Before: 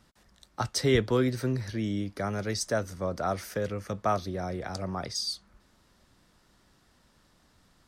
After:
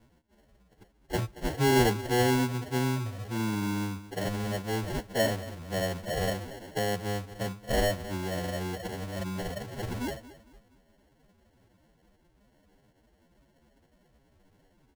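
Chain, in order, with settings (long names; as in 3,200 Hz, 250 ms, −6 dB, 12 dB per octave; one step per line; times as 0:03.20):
repeating echo 120 ms, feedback 34%, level −17 dB
decimation without filtering 36×
phase-vocoder stretch with locked phases 1.9×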